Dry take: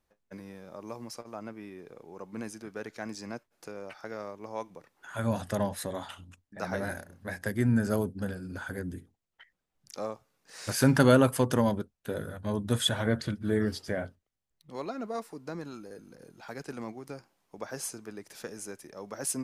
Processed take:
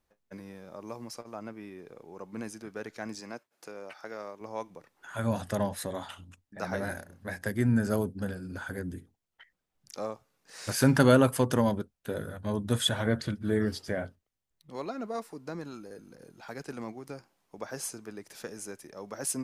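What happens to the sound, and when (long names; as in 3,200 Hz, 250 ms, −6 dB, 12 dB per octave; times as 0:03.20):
0:03.20–0:04.41: high-pass filter 300 Hz 6 dB per octave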